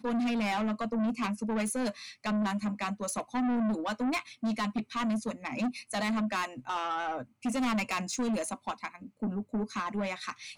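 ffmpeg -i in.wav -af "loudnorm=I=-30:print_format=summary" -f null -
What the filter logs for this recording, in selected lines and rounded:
Input Integrated:    -32.8 LUFS
Input True Peak:     -24.8 dBTP
Input LRA:             2.5 LU
Input Threshold:     -42.8 LUFS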